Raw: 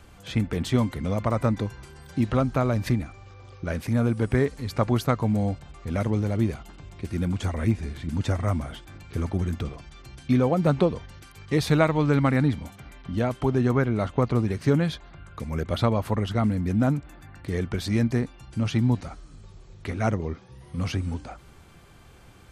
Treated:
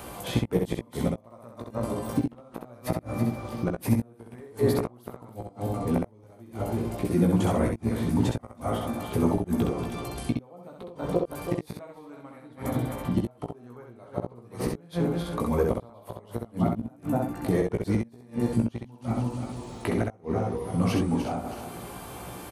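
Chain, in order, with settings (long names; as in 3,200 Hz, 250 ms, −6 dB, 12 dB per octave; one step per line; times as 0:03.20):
feedback delay that plays each chunk backwards 162 ms, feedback 48%, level −9 dB
high-pass filter 260 Hz 6 dB per octave
flat-topped bell 3,200 Hz −11.5 dB 2.8 octaves
gate with flip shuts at −20 dBFS, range −38 dB
in parallel at +1 dB: downward compressor, threshold −47 dBFS, peak gain reduction 19 dB
on the sum: double-tracking delay 17 ms −7 dB
on a send: ambience of single reflections 17 ms −13.5 dB, 65 ms −3.5 dB
on the sum: one half of a high-frequency compander encoder only
level +6 dB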